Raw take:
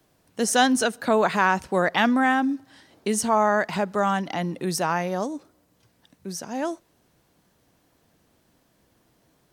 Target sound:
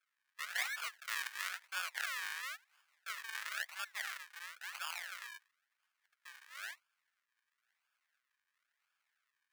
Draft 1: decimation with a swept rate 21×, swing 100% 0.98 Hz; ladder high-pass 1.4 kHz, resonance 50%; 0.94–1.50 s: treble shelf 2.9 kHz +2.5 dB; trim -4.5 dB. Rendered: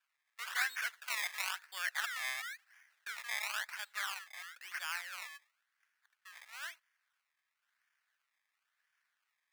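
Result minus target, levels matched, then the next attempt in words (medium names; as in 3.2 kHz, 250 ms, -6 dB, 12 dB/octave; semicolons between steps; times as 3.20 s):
decimation with a swept rate: distortion -8 dB
decimation with a swept rate 44×, swing 100% 0.98 Hz; ladder high-pass 1.4 kHz, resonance 50%; 0.94–1.50 s: treble shelf 2.9 kHz +2.5 dB; trim -4.5 dB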